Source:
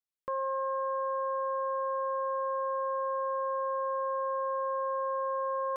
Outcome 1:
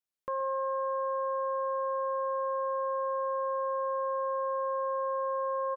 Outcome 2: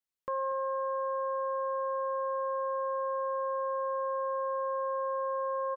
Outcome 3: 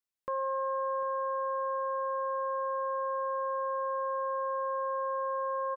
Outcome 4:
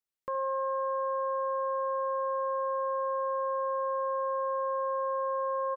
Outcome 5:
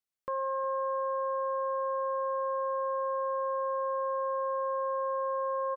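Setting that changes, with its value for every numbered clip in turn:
repeating echo, delay time: 125, 237, 747, 69, 361 milliseconds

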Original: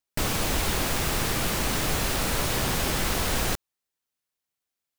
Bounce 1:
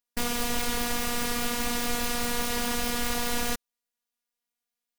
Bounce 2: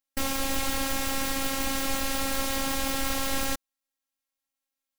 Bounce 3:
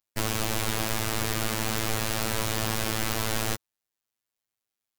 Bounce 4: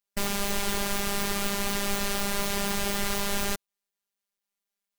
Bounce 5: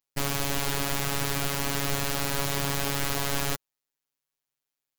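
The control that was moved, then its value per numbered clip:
phases set to zero, frequency: 240, 270, 110, 200, 140 Hertz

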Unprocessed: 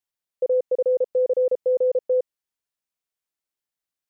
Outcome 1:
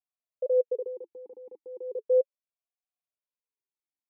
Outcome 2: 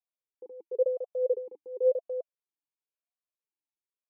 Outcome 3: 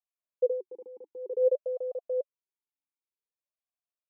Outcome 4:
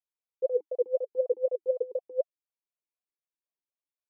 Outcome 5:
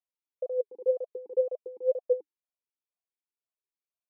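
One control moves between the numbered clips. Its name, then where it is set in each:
formant filter swept between two vowels, speed: 0.36, 0.95, 0.53, 4, 2 Hertz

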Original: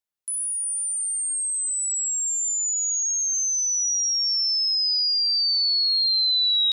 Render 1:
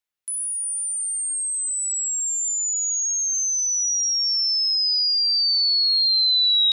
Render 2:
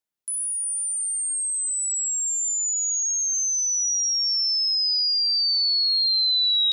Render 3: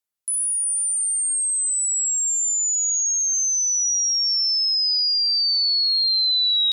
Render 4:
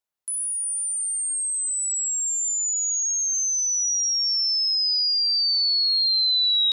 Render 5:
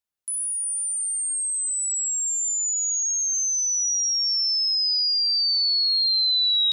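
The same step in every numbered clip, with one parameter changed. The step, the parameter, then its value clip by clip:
parametric band, centre frequency: 2,300, 260, 13,000, 830, 73 Hertz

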